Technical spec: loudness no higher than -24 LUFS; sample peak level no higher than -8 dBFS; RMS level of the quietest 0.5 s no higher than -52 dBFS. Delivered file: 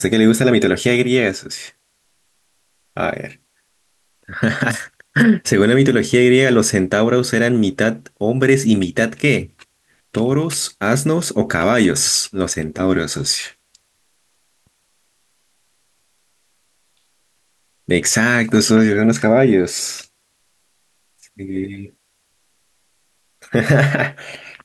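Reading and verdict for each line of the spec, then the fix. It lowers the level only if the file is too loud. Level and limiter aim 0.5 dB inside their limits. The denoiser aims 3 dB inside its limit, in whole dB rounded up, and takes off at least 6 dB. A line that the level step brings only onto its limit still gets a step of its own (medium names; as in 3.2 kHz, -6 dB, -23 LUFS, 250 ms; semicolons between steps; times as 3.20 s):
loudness -16.0 LUFS: fail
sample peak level -2.0 dBFS: fail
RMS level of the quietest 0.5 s -64 dBFS: pass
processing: trim -8.5 dB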